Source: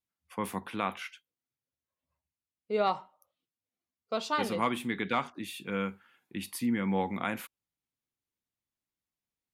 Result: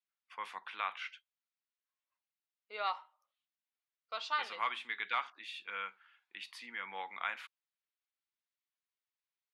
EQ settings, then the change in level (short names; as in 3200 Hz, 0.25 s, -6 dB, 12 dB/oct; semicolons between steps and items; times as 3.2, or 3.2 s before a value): Butterworth band-pass 2200 Hz, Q 0.64; -1.5 dB